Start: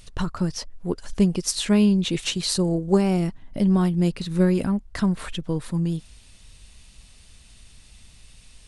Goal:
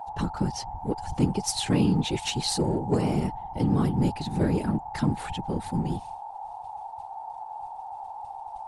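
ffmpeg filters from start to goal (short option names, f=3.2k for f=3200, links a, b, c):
-filter_complex "[0:a]agate=range=-33dB:threshold=-36dB:ratio=3:detection=peak,aeval=exprs='val(0)+0.0251*sin(2*PI*840*n/s)':c=same,asplit=2[a][b];[b]asoftclip=type=hard:threshold=-19.5dB,volume=-8.5dB[c];[a][c]amix=inputs=2:normalize=0,afftfilt=real='hypot(re,im)*cos(2*PI*random(0))':imag='hypot(re,im)*sin(2*PI*random(1))':win_size=512:overlap=0.75"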